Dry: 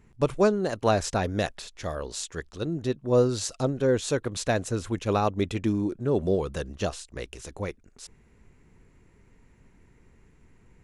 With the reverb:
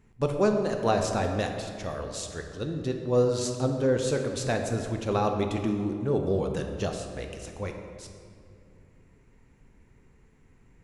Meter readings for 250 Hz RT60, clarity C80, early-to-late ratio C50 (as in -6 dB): 3.0 s, 6.5 dB, 5.5 dB